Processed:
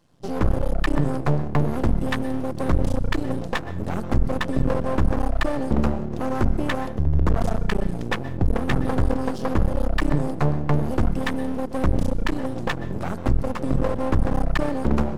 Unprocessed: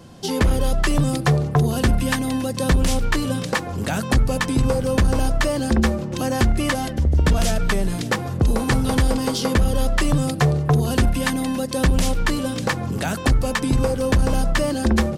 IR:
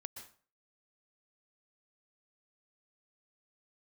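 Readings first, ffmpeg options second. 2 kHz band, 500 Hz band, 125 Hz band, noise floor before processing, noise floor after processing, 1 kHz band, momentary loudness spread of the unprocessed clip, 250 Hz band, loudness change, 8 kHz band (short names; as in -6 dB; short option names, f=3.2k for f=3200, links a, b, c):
-6.0 dB, -3.0 dB, -3.5 dB, -29 dBFS, -30 dBFS, -3.0 dB, 5 LU, -3.0 dB, -4.0 dB, -16.5 dB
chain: -filter_complex "[0:a]afwtdn=0.0631,aeval=exprs='max(val(0),0)':c=same,asplit=2[a][b];[1:a]atrim=start_sample=2205[c];[b][c]afir=irnorm=-1:irlink=0,volume=-3.5dB[d];[a][d]amix=inputs=2:normalize=0,volume=-1.5dB"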